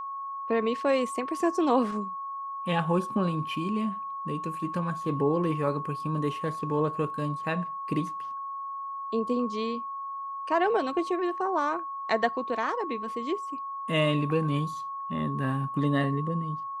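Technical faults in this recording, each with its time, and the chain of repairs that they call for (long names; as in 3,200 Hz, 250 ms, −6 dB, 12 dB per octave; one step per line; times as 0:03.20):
whistle 1,100 Hz −33 dBFS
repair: notch filter 1,100 Hz, Q 30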